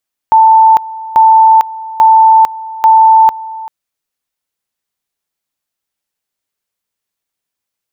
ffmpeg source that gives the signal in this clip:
-f lavfi -i "aevalsrc='pow(10,(-2-19*gte(mod(t,0.84),0.45))/20)*sin(2*PI*887*t)':d=3.36:s=44100"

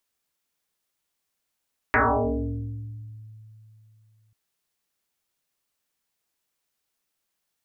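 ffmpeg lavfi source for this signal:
-f lavfi -i "aevalsrc='0.168*pow(10,-3*t/3.14)*sin(2*PI*109*t+12*pow(10,-3*t/1.67)*sin(2*PI*1.6*109*t))':d=2.39:s=44100"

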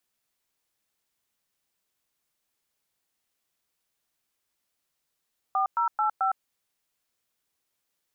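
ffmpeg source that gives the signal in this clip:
-f lavfi -i "aevalsrc='0.0596*clip(min(mod(t,0.219),0.11-mod(t,0.219))/0.002,0,1)*(eq(floor(t/0.219),0)*(sin(2*PI*770*mod(t,0.219))+sin(2*PI*1209*mod(t,0.219)))+eq(floor(t/0.219),1)*(sin(2*PI*941*mod(t,0.219))+sin(2*PI*1336*mod(t,0.219)))+eq(floor(t/0.219),2)*(sin(2*PI*852*mod(t,0.219))+sin(2*PI*1336*mod(t,0.219)))+eq(floor(t/0.219),3)*(sin(2*PI*770*mod(t,0.219))+sin(2*PI*1336*mod(t,0.219))))':d=0.876:s=44100"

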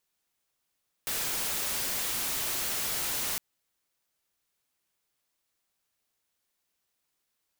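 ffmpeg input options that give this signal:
-f lavfi -i "anoisesrc=c=white:a=0.0461:d=2.31:r=44100:seed=1"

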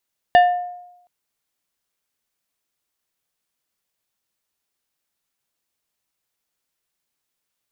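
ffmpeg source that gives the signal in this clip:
-f lavfi -i "aevalsrc='0.473*pow(10,-3*t/0.87)*sin(2*PI*713*t)+0.178*pow(10,-3*t/0.458)*sin(2*PI*1782.5*t)+0.0668*pow(10,-3*t/0.33)*sin(2*PI*2852*t)+0.0251*pow(10,-3*t/0.282)*sin(2*PI*3565*t)+0.00944*pow(10,-3*t/0.235)*sin(2*PI*4634.5*t)':d=0.72:s=44100"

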